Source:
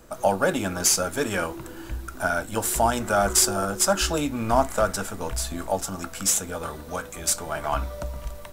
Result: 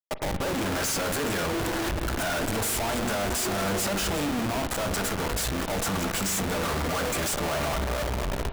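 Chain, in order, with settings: high shelf 11000 Hz +8.5 dB; notches 60/120/180/240/300/360/420/480/540 Hz; compressor 12:1, threshold -31 dBFS, peak gain reduction 19 dB; limiter -27 dBFS, peak gain reduction 10.5 dB; AGC gain up to 10.5 dB; Schmitt trigger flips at -35 dBFS; spring tank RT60 3.4 s, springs 41 ms, chirp 20 ms, DRR 9 dB

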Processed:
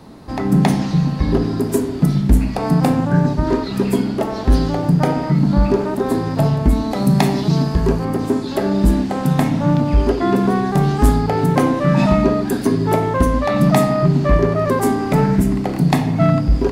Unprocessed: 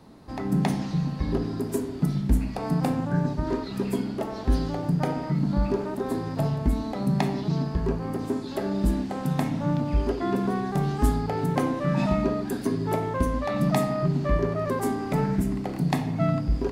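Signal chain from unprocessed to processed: 6.91–8.05 high shelf 5300 Hz +9 dB; in parallel at -8 dB: wavefolder -16.5 dBFS; on the sum: gain +7 dB

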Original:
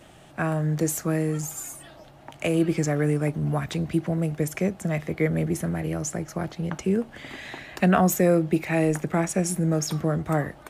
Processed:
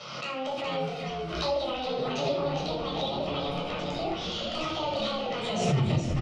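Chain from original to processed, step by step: tape stop at the end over 1.76 s; three-band isolator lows -16 dB, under 510 Hz, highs -23 dB, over 4200 Hz; compressor 5:1, threshold -36 dBFS, peak gain reduction 15.5 dB; wrapped overs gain 26 dB; wide varispeed 1.72×; hard clip -31 dBFS, distortion -22 dB; speaker cabinet 110–5600 Hz, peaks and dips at 140 Hz +9 dB, 520 Hz +8 dB, 1100 Hz -8 dB, 1800 Hz -10 dB; frequency-shifting echo 0.416 s, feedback 40%, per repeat -100 Hz, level -4.5 dB; reverb RT60 0.65 s, pre-delay 10 ms, DRR -4 dB; backwards sustainer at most 41 dB/s

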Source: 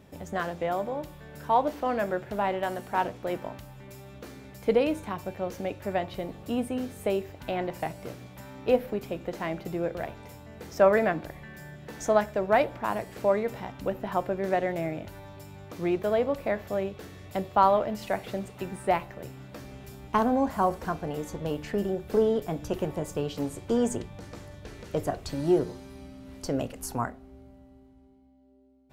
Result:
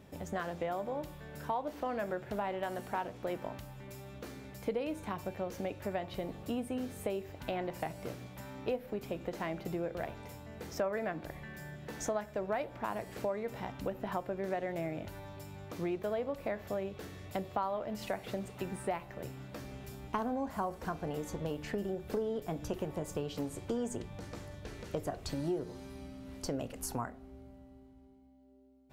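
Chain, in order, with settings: compressor 4:1, threshold -31 dBFS, peak gain reduction 14 dB; gain -2 dB

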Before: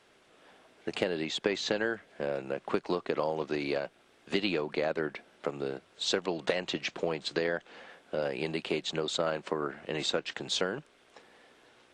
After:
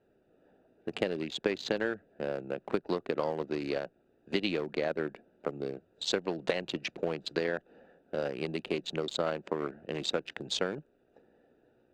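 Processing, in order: Wiener smoothing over 41 samples

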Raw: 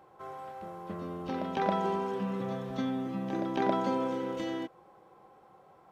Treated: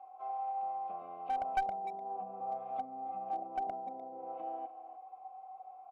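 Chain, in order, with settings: treble ducked by the level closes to 360 Hz, closed at -27.5 dBFS; vowel filter a; small resonant body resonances 760/2100 Hz, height 17 dB, ringing for 75 ms; speakerphone echo 0.3 s, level -13 dB; one-sided clip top -31.5 dBFS; gain +1.5 dB

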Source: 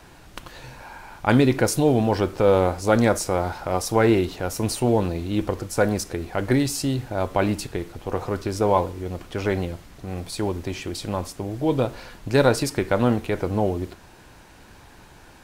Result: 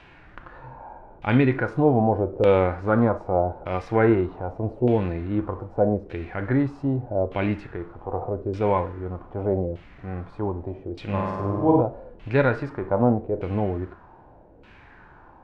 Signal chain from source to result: 11.04–11.81 flutter echo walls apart 8.6 m, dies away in 1.4 s; LFO low-pass saw down 0.82 Hz 460–2900 Hz; harmonic-percussive split percussive -9 dB

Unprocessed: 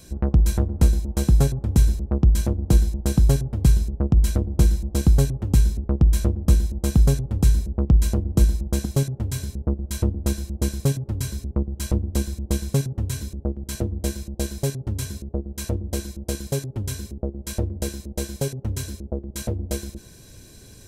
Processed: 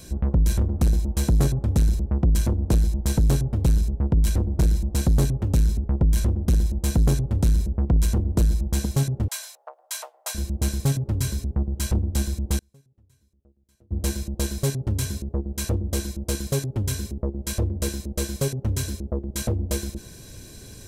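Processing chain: 9.28–10.35 steep high-pass 640 Hz 48 dB/oct; 12.58–13.91 flipped gate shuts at -25 dBFS, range -37 dB; soft clip -18 dBFS, distortion -9 dB; gain +3.5 dB

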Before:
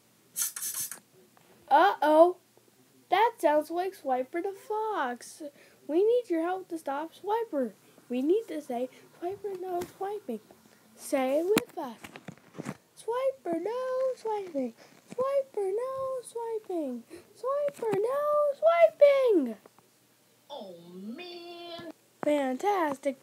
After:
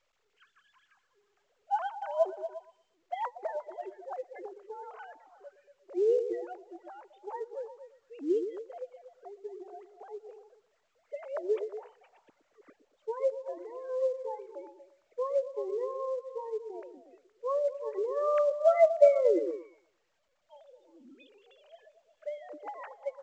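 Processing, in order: sine-wave speech; 22.36–22.8 dynamic EQ 2300 Hz, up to -5 dB, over -55 dBFS, Q 1.5; delay with a stepping band-pass 0.117 s, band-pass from 350 Hz, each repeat 0.7 oct, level -8 dB; gain -4.5 dB; µ-law 128 kbps 16000 Hz

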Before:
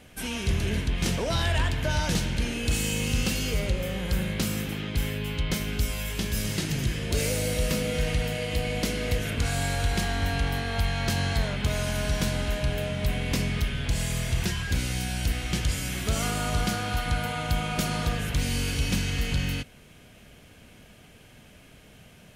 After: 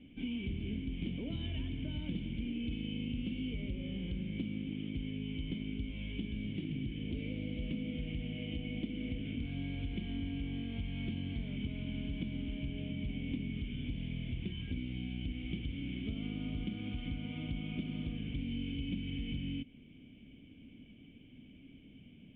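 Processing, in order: vocal tract filter i; compressor 3:1, threshold -42 dBFS, peak gain reduction 10 dB; gain +5.5 dB

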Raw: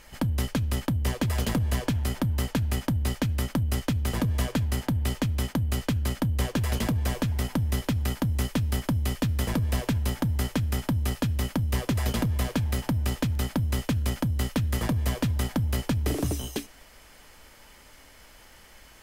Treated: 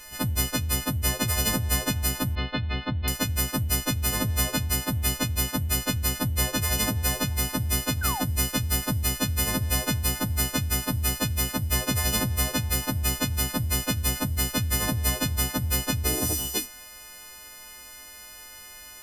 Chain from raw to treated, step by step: frequency quantiser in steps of 3 st; 2.35–3.08 elliptic low-pass 4000 Hz, stop band 50 dB; 8.01–8.22 painted sound fall 680–1600 Hz -32 dBFS

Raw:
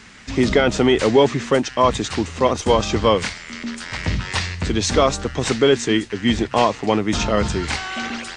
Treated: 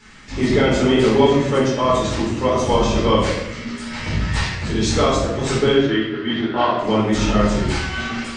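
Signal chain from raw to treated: 5.73–6.79 speaker cabinet 190–3800 Hz, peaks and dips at 200 Hz -7 dB, 450 Hz -4 dB, 810 Hz -4 dB, 1400 Hz +8 dB, 2400 Hz -7 dB; shoebox room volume 300 m³, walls mixed, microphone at 4.2 m; gain -11 dB

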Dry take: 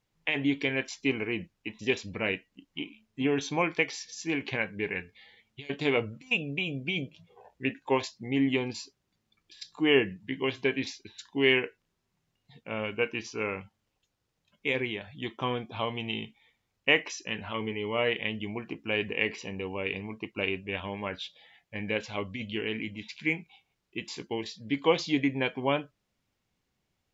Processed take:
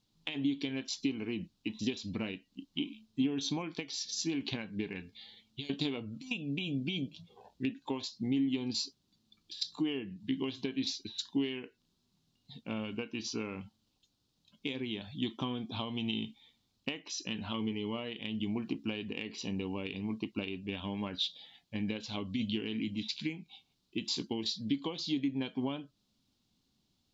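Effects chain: compressor 16:1, threshold -33 dBFS, peak gain reduction 17 dB; graphic EQ 250/500/2000/4000 Hz +9/-6/-11/+12 dB

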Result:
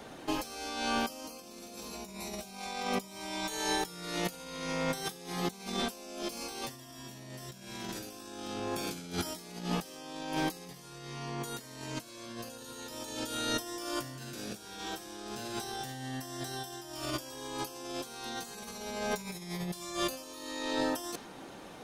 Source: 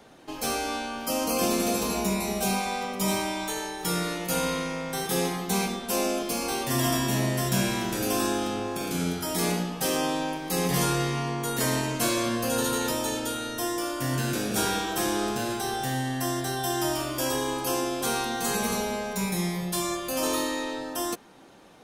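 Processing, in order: dynamic EQ 4800 Hz, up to +6 dB, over -46 dBFS, Q 1.1; negative-ratio compressor -34 dBFS, ratio -0.5; gain -3 dB

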